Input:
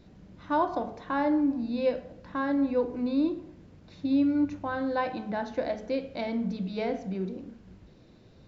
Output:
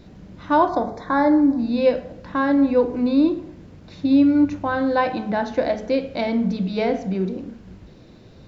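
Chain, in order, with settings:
0:00.69–0:01.59: Butterworth band-reject 2,800 Hz, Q 2.2
level +9 dB

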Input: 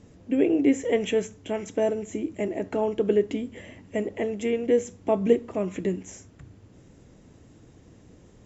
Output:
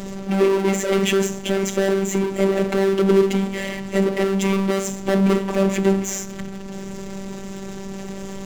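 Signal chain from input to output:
four-comb reverb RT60 0.37 s, combs from 27 ms, DRR 13.5 dB
power curve on the samples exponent 0.5
phases set to zero 194 Hz
level +2 dB

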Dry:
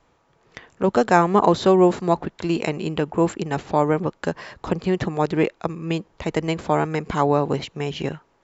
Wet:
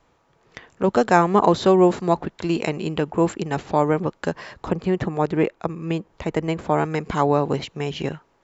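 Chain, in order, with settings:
0:04.56–0:06.78: dynamic equaliser 4,900 Hz, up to −7 dB, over −46 dBFS, Q 0.72

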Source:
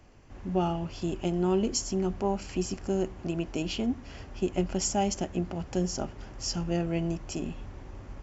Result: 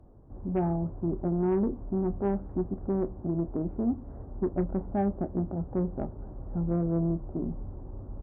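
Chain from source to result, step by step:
Gaussian smoothing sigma 9.8 samples
harmonic generator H 5 −22 dB, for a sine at −17 dBFS
double-tracking delay 30 ms −14 dB

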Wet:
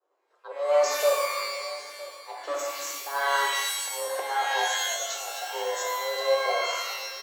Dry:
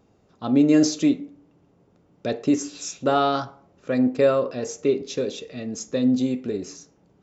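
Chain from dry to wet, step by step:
in parallel at −9.5 dB: wave folding −16 dBFS
0:02.37–0:02.95: on the sum: tube saturation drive 28 dB, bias 0.5
downward compressor 1.5 to 1, threshold −35 dBFS, peak gain reduction 8 dB
on a send: single-tap delay 957 ms −18.5 dB
on the sum: volume swells 273 ms
downward expander −46 dBFS
frequency shifter +280 Hz
parametric band 1,200 Hz +8 dB 0.95 octaves
reverb with rising layers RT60 1.1 s, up +12 semitones, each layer −2 dB, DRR 1 dB
level −2.5 dB

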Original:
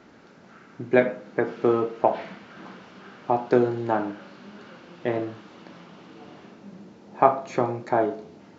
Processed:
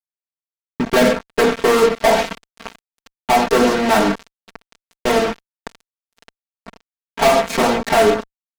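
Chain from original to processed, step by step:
0:02.68–0:04.08: mains-hum notches 60/120/180/240/300/360/420/480/540/600 Hz
fuzz pedal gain 36 dB, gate −36 dBFS
comb filter 4.4 ms, depth 89%

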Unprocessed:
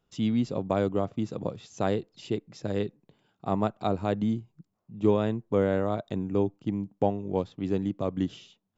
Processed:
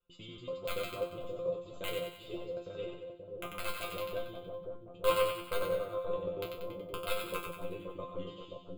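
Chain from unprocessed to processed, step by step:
reversed piece by piece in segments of 95 ms
wrap-around overflow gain 14 dB
phaser with its sweep stopped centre 1,200 Hz, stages 8
resonators tuned to a chord F3 fifth, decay 0.32 s
on a send: echo with a time of its own for lows and highs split 900 Hz, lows 529 ms, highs 93 ms, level −4.5 dB
on the sum: level +8 dB

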